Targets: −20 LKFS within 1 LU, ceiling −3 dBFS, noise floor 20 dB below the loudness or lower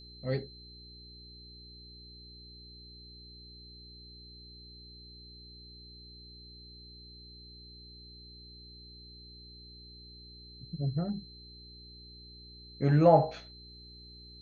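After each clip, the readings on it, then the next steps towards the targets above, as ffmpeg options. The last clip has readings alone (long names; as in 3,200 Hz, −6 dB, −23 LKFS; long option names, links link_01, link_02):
mains hum 60 Hz; hum harmonics up to 420 Hz; level of the hum −51 dBFS; interfering tone 4,100 Hz; level of the tone −51 dBFS; integrated loudness −28.5 LKFS; sample peak −8.5 dBFS; target loudness −20.0 LKFS
→ -af "bandreject=frequency=60:width_type=h:width=4,bandreject=frequency=120:width_type=h:width=4,bandreject=frequency=180:width_type=h:width=4,bandreject=frequency=240:width_type=h:width=4,bandreject=frequency=300:width_type=h:width=4,bandreject=frequency=360:width_type=h:width=4,bandreject=frequency=420:width_type=h:width=4"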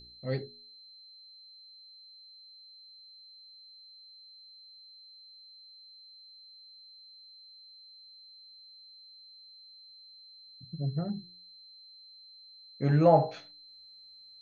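mains hum none found; interfering tone 4,100 Hz; level of the tone −51 dBFS
→ -af "bandreject=frequency=4100:width=30"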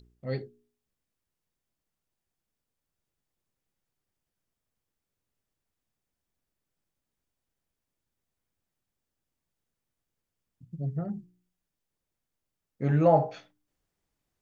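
interfering tone none found; integrated loudness −28.0 LKFS; sample peak −8.5 dBFS; target loudness −20.0 LKFS
→ -af "volume=8dB,alimiter=limit=-3dB:level=0:latency=1"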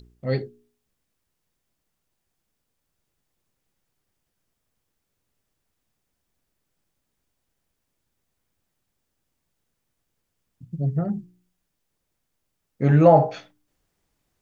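integrated loudness −20.5 LKFS; sample peak −3.0 dBFS; background noise floor −78 dBFS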